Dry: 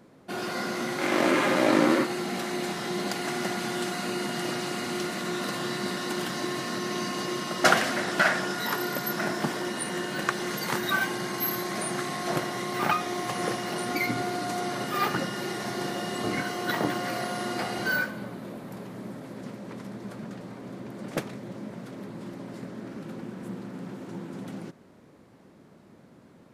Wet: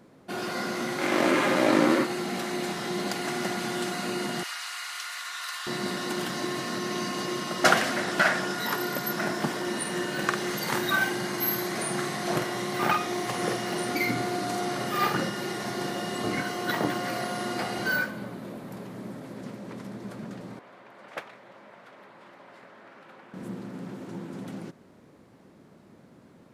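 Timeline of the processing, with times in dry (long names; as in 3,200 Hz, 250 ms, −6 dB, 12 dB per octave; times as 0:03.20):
0:04.43–0:05.67: high-pass filter 1,100 Hz 24 dB per octave
0:09.63–0:15.31: double-tracking delay 48 ms −6 dB
0:20.59–0:23.34: three-way crossover with the lows and the highs turned down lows −22 dB, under 600 Hz, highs −14 dB, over 3,400 Hz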